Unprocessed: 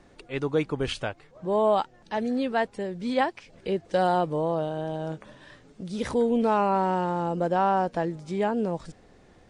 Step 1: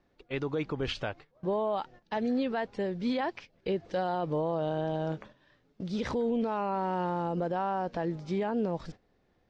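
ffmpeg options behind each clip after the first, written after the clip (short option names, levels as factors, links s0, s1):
-af "lowpass=f=5700:w=0.5412,lowpass=f=5700:w=1.3066,agate=range=0.178:threshold=0.00631:ratio=16:detection=peak,alimiter=limit=0.075:level=0:latency=1:release=71"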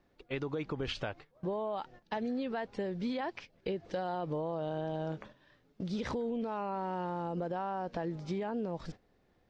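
-af "acompressor=threshold=0.0251:ratio=6"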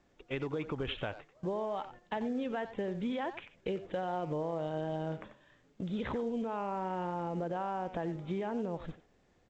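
-filter_complex "[0:a]aresample=8000,aresample=44100,asplit=2[s0][s1];[s1]adelay=90,highpass=300,lowpass=3400,asoftclip=type=hard:threshold=0.0266,volume=0.282[s2];[s0][s2]amix=inputs=2:normalize=0" -ar 16000 -c:a pcm_mulaw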